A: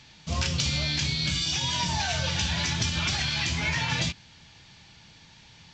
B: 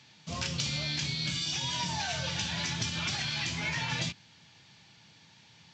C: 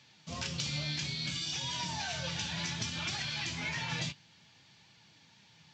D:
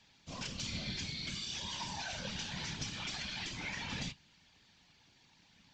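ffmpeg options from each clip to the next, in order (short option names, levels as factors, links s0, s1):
-af "highpass=f=100:w=0.5412,highpass=f=100:w=1.3066,volume=0.562"
-af "flanger=delay=1.6:depth=5.5:regen=75:speed=0.61:shape=triangular,volume=1.12"
-af "afftfilt=real='hypot(re,im)*cos(2*PI*random(0))':imag='hypot(re,im)*sin(2*PI*random(1))':win_size=512:overlap=0.75,volume=1.19"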